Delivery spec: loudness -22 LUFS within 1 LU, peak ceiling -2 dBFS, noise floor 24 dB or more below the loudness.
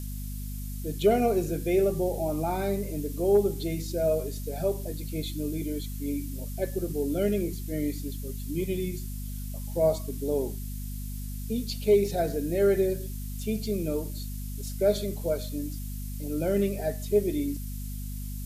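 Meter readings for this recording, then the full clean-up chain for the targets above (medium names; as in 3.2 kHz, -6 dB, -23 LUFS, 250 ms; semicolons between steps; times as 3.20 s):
hum 50 Hz; highest harmonic 250 Hz; hum level -33 dBFS; noise floor -35 dBFS; noise floor target -54 dBFS; loudness -29.5 LUFS; peak level -12.0 dBFS; loudness target -22.0 LUFS
-> hum notches 50/100/150/200/250 Hz; noise print and reduce 19 dB; trim +7.5 dB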